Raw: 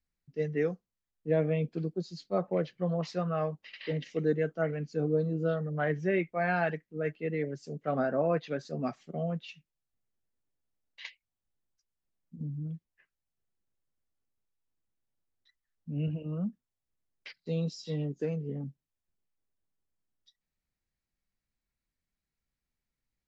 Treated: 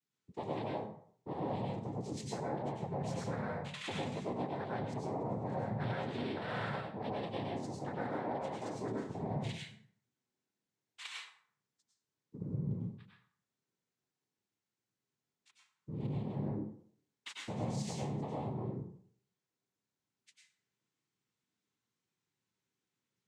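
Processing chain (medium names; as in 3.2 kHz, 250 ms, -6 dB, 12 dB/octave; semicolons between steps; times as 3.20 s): peaking EQ 780 Hz -5.5 dB 0.77 oct; compression 6:1, threshold -40 dBFS, peak gain reduction 16 dB; noise-vocoded speech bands 6; plate-style reverb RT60 0.58 s, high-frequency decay 0.65×, pre-delay 85 ms, DRR -3.5 dB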